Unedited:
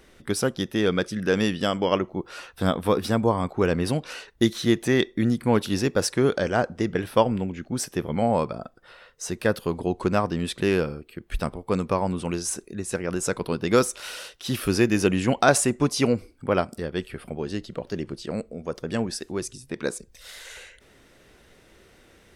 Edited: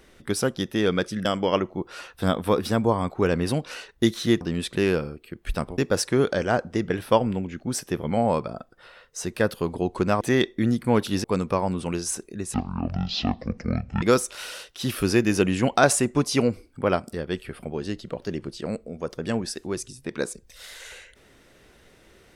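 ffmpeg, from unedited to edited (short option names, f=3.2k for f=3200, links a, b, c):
-filter_complex "[0:a]asplit=8[a][b][c][d][e][f][g][h];[a]atrim=end=1.252[i];[b]atrim=start=1.638:end=4.802[j];[c]atrim=start=10.258:end=11.632[k];[d]atrim=start=5.828:end=10.262[l];[e]atrim=start=4.798:end=5.832[m];[f]atrim=start=11.628:end=12.934[n];[g]atrim=start=12.93:end=13.67,asetpts=PTS-STARTPTS,asetrate=22050,aresample=44100[o];[h]atrim=start=13.666[p];[i][j]acrossfade=d=0.004:c1=hsin:c2=hsin[q];[q][k]acrossfade=d=0.004:c1=hsin:c2=hsin[r];[r][l]acrossfade=d=0.004:c1=hsin:c2=hsin[s];[s][m]acrossfade=d=0.004:c1=hsin:c2=hsin[t];[t][n]acrossfade=d=0.004:c1=hsin:c2=hsin[u];[u][o]acrossfade=d=0.004:c1=hsin:c2=hsin[v];[v][p]acrossfade=d=0.004:c1=hsin:c2=hsin"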